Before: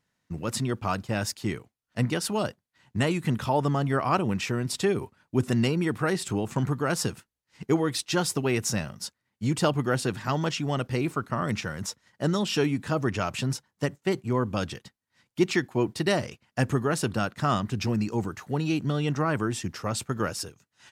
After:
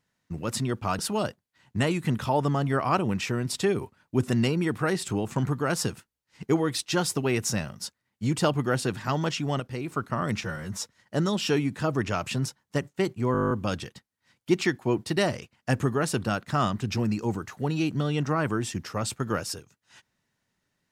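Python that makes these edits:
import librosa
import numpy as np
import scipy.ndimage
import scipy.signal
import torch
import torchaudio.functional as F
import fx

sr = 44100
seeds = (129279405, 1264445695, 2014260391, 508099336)

y = fx.edit(x, sr, fx.cut(start_s=0.99, length_s=1.2),
    fx.clip_gain(start_s=10.8, length_s=0.32, db=-6.0),
    fx.stretch_span(start_s=11.64, length_s=0.25, factor=1.5),
    fx.stutter(start_s=14.4, slice_s=0.02, count=10), tone=tone)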